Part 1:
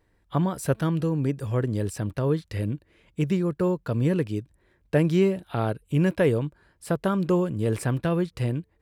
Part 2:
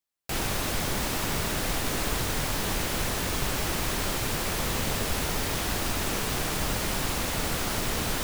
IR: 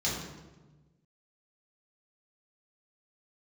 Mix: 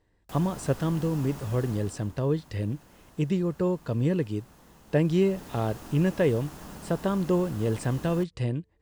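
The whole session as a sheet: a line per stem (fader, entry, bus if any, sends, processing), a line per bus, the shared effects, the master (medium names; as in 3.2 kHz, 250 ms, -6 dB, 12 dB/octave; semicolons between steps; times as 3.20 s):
-2.0 dB, 0.00 s, no send, steep low-pass 9 kHz; peaking EQ 1.4 kHz -5.5 dB 0.35 oct
1.68 s -9 dB -> 2.14 s -21.5 dB -> 4.82 s -21.5 dB -> 5.49 s -10 dB, 0.00 s, send -22 dB, ten-band graphic EQ 250 Hz +6 dB, 1 kHz +6 dB, 4 kHz -5 dB; auto duck -9 dB, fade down 0.40 s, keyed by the first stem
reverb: on, RT60 1.2 s, pre-delay 3 ms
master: band-stop 2.3 kHz, Q 14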